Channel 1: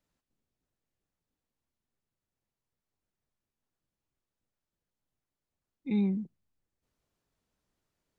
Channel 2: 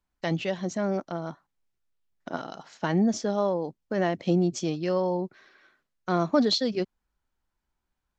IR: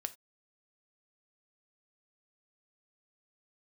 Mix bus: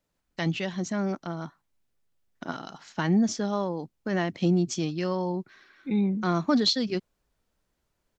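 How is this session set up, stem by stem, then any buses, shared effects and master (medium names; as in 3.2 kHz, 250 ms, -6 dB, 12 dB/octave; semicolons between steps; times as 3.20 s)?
+2.5 dB, 0.00 s, no send, peaking EQ 550 Hz +4 dB
+2.0 dB, 0.15 s, no send, peaking EQ 560 Hz -8 dB 1.1 oct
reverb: none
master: none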